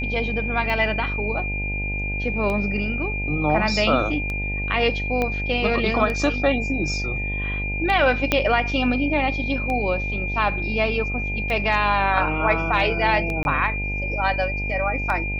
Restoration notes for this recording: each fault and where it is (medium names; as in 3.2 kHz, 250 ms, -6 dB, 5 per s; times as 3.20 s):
buzz 50 Hz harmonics 18 -28 dBFS
tick 33 1/3 rpm -16 dBFS
whine 2.4 kHz -27 dBFS
5.22 s: pop -11 dBFS
8.32 s: pop -4 dBFS
13.43–13.45 s: dropout 21 ms